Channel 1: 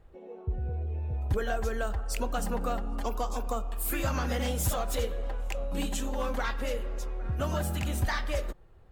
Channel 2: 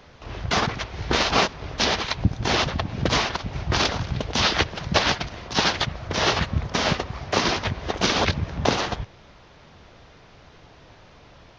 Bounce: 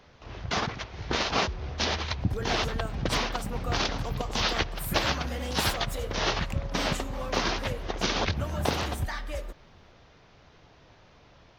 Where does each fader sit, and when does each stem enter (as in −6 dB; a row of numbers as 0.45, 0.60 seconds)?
−4.0, −6.5 decibels; 1.00, 0.00 seconds